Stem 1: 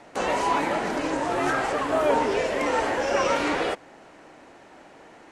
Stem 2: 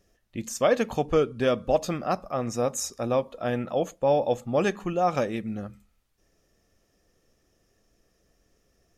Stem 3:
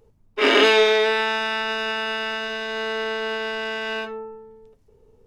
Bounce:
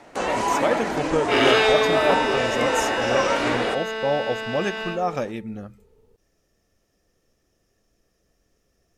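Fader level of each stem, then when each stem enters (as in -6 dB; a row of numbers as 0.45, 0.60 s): +1.0, -1.0, -3.0 dB; 0.00, 0.00, 0.90 s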